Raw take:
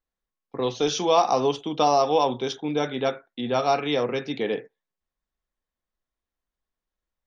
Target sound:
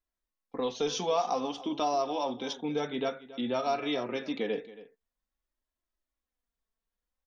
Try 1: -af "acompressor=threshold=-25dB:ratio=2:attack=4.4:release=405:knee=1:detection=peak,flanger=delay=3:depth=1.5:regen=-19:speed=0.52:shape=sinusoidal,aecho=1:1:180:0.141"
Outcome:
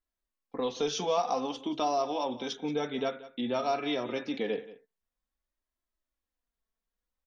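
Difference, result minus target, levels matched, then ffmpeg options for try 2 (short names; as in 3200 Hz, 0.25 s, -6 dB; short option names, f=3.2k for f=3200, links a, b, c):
echo 96 ms early
-af "acompressor=threshold=-25dB:ratio=2:attack=4.4:release=405:knee=1:detection=peak,flanger=delay=3:depth=1.5:regen=-19:speed=0.52:shape=sinusoidal,aecho=1:1:276:0.141"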